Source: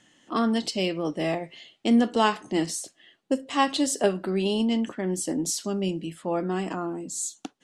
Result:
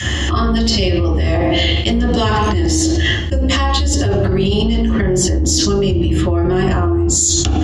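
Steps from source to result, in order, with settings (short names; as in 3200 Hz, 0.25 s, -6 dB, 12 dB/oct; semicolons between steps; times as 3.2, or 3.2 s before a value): octaver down 2 oct, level +3 dB; 1.3–2.24 HPF 88 Hz 6 dB/oct; reverb RT60 0.55 s, pre-delay 3 ms, DRR -4.5 dB; dynamic EQ 6200 Hz, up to +5 dB, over -37 dBFS, Q 0.98; fast leveller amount 100%; gain -10 dB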